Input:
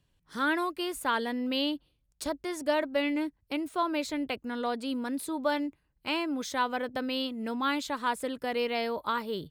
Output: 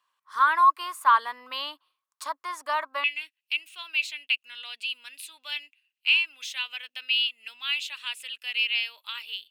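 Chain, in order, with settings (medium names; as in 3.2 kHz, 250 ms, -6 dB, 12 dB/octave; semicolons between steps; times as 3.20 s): resonant high-pass 1.1 kHz, resonance Q 10, from 3.04 s 2.7 kHz; trim -1.5 dB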